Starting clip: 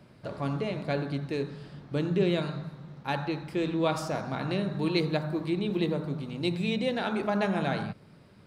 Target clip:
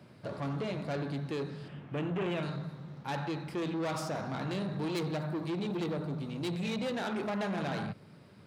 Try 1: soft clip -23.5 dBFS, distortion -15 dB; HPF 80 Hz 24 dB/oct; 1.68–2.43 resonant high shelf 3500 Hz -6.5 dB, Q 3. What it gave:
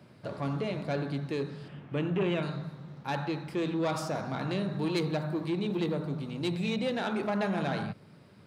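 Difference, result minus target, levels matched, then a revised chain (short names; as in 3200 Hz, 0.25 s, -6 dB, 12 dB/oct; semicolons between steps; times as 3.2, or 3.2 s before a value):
soft clip: distortion -6 dB
soft clip -30.5 dBFS, distortion -8 dB; HPF 80 Hz 24 dB/oct; 1.68–2.43 resonant high shelf 3500 Hz -6.5 dB, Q 3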